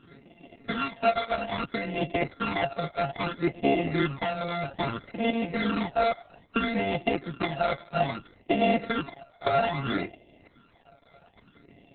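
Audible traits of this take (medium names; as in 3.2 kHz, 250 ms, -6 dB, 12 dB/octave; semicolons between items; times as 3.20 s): a buzz of ramps at a fixed pitch in blocks of 64 samples; phasing stages 12, 0.61 Hz, lowest notch 290–1400 Hz; Opus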